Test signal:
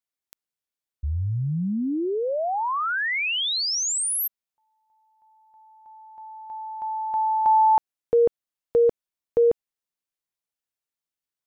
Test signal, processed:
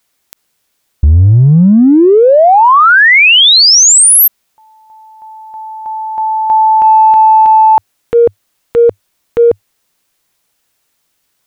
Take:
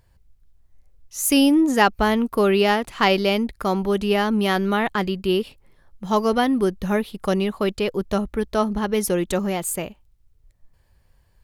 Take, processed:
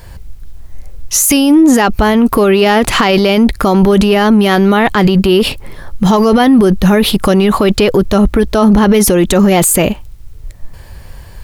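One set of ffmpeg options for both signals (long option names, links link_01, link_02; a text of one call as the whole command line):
ffmpeg -i in.wav -af "adynamicequalizer=threshold=0.00447:dfrequency=100:dqfactor=4.2:tfrequency=100:tqfactor=4.2:attack=5:release=100:ratio=0.375:range=1.5:mode=boostabove:tftype=bell,acompressor=threshold=-30dB:ratio=6:attack=1.4:release=26:knee=1:detection=peak,alimiter=level_in=28.5dB:limit=-1dB:release=50:level=0:latency=1,volume=-1dB" out.wav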